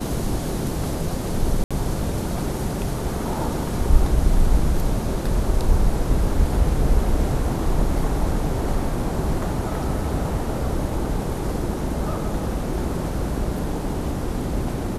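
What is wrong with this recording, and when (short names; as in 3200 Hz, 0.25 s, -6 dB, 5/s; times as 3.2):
1.64–1.71 gap 66 ms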